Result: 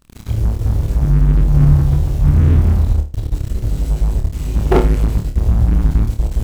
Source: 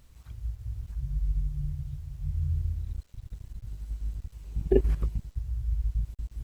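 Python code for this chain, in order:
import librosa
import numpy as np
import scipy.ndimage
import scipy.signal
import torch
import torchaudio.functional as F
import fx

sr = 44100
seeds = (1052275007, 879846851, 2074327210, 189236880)

y = fx.hpss(x, sr, part='harmonic', gain_db=5)
y = fx.add_hum(y, sr, base_hz=60, snr_db=30)
y = fx.leveller(y, sr, passes=5)
y = fx.room_flutter(y, sr, wall_m=4.7, rt60_s=0.31)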